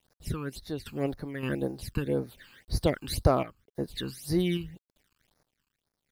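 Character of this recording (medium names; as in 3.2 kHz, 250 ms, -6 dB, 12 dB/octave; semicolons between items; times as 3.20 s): a quantiser's noise floor 10-bit, dither none; phasing stages 12, 1.9 Hz, lowest notch 610–3000 Hz; random-step tremolo, depth 75%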